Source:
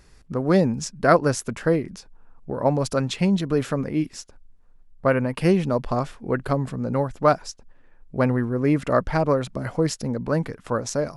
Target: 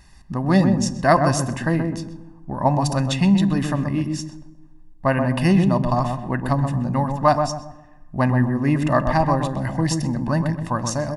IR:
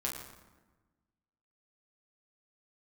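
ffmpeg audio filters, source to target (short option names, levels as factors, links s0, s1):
-filter_complex "[0:a]lowshelf=f=160:g=-3,aecho=1:1:1.1:0.83,asplit=2[s0][s1];[s1]adelay=128,lowpass=f=900:p=1,volume=0.631,asplit=2[s2][s3];[s3]adelay=128,lowpass=f=900:p=1,volume=0.39,asplit=2[s4][s5];[s5]adelay=128,lowpass=f=900:p=1,volume=0.39,asplit=2[s6][s7];[s7]adelay=128,lowpass=f=900:p=1,volume=0.39,asplit=2[s8][s9];[s9]adelay=128,lowpass=f=900:p=1,volume=0.39[s10];[s0][s2][s4][s6][s8][s10]amix=inputs=6:normalize=0,asplit=2[s11][s12];[1:a]atrim=start_sample=2205[s13];[s12][s13]afir=irnorm=-1:irlink=0,volume=0.178[s14];[s11][s14]amix=inputs=2:normalize=0"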